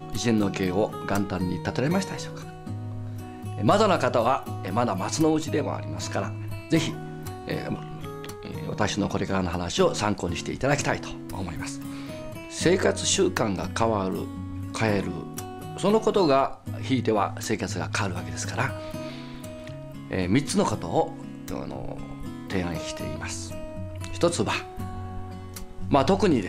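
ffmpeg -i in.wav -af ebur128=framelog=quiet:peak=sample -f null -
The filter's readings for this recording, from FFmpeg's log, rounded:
Integrated loudness:
  I:         -26.9 LUFS
  Threshold: -37.2 LUFS
Loudness range:
  LRA:         5.1 LU
  Threshold: -47.3 LUFS
  LRA low:   -30.3 LUFS
  LRA high:  -25.2 LUFS
Sample peak:
  Peak:       -7.4 dBFS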